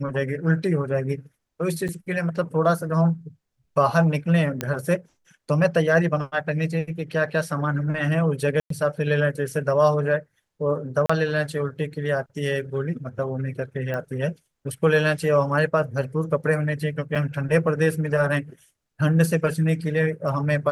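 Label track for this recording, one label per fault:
1.880000	1.890000	gap 7.7 ms
4.610000	4.610000	pop -10 dBFS
8.600000	8.700000	gap 0.103 s
11.060000	11.100000	gap 35 ms
13.940000	13.940000	pop -18 dBFS
17.150000	17.160000	gap 6 ms

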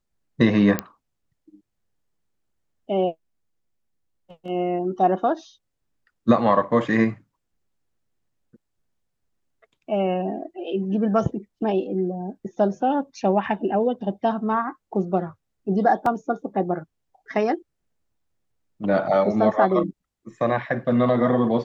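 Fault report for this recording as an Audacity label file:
0.790000	0.790000	pop -8 dBFS
16.060000	16.060000	gap 3 ms

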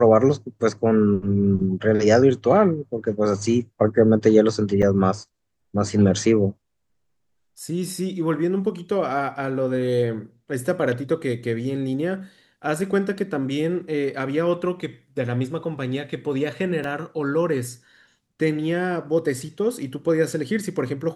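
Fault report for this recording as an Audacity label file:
4.820000	4.830000	gap 6.9 ms
16.840000	16.840000	gap 2 ms

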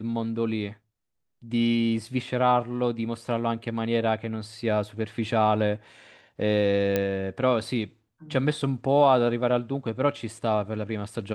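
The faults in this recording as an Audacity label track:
6.960000	6.960000	pop -11 dBFS

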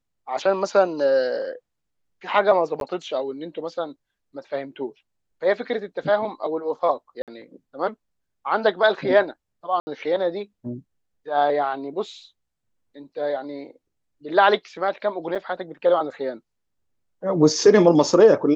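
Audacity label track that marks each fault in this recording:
2.800000	2.810000	gap 12 ms
7.220000	7.280000	gap 57 ms
9.800000	9.870000	gap 70 ms
15.350000	15.360000	gap 6 ms

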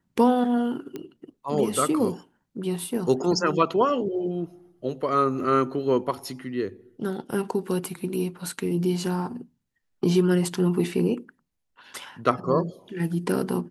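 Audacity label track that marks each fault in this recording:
0.960000	0.960000	pop -21 dBFS

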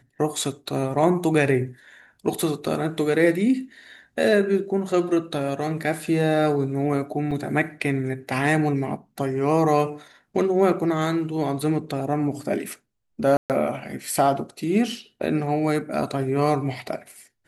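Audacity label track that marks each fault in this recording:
7.310000	7.310000	gap 4.5 ms
13.370000	13.500000	gap 0.128 s

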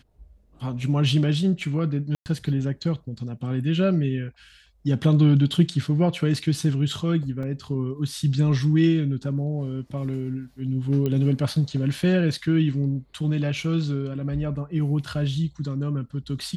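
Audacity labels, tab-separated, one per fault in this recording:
2.150000	2.260000	gap 0.109 s
7.430000	7.430000	gap 2.9 ms
11.060000	11.060000	pop -15 dBFS

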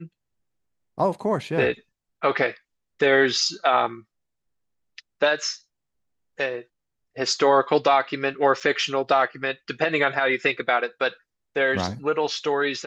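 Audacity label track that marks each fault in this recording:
8.600000	8.610000	gap 5.7 ms

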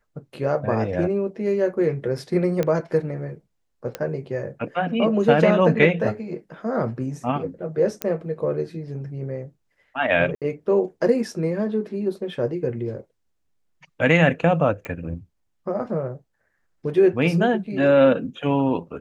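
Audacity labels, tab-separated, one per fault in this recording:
2.630000	2.630000	pop -11 dBFS
3.950000	3.950000	pop -13 dBFS
8.020000	8.020000	pop -8 dBFS
10.350000	10.420000	gap 67 ms
14.850000	14.850000	pop -18 dBFS

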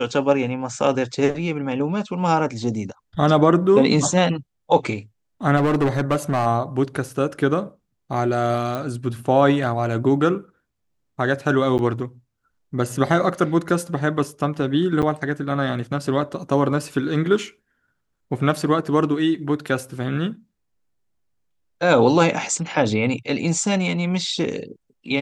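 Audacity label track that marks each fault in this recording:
5.560000	6.470000	clipped -15 dBFS
8.750000	8.750000	pop
11.780000	11.790000	gap 9.6 ms
15.020000	15.030000	gap 8.1 ms

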